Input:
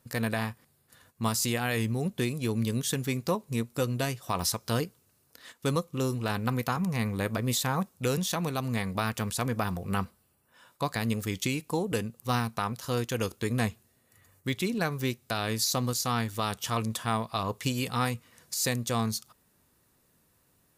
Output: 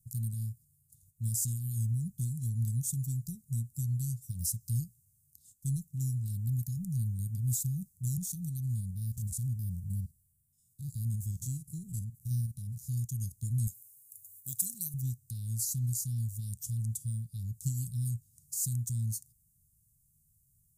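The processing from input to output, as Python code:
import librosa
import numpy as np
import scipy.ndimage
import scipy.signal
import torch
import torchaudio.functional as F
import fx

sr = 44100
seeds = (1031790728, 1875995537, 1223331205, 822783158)

y = fx.spec_steps(x, sr, hold_ms=50, at=(8.65, 12.88))
y = fx.riaa(y, sr, side='recording', at=(13.67, 14.94))
y = scipy.signal.sosfilt(scipy.signal.ellip(3, 1.0, 60, [140.0, 7400.0], 'bandstop', fs=sr, output='sos'), y)
y = fx.low_shelf(y, sr, hz=73.0, db=5.5)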